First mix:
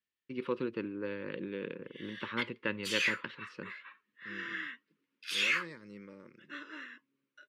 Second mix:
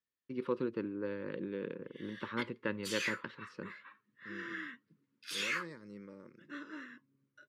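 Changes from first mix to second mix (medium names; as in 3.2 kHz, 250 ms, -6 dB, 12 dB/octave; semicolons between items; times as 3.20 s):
background: remove high-pass 330 Hz 12 dB/octave; master: add peaking EQ 2.7 kHz -8.5 dB 1.1 oct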